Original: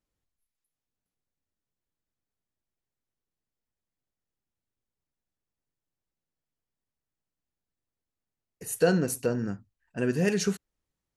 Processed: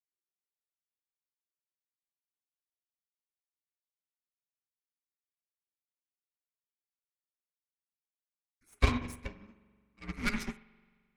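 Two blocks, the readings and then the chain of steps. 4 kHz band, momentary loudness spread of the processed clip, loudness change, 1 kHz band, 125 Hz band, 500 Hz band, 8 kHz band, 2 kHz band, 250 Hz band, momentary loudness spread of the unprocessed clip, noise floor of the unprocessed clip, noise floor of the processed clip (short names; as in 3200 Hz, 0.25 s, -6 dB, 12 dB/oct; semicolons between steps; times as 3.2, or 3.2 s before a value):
-3.5 dB, 17 LU, -7.0 dB, -2.0 dB, -5.5 dB, -17.5 dB, -15.5 dB, -3.0 dB, -10.5 dB, 17 LU, under -85 dBFS, under -85 dBFS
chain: bell 2500 Hz +13.5 dB 0.65 oct; added harmonics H 3 -17 dB, 4 -21 dB, 8 -23 dB, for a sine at -9.5 dBFS; spring tank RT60 1.8 s, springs 43 ms, chirp 50 ms, DRR 2.5 dB; frequency shift -430 Hz; upward expander 2.5:1, over -36 dBFS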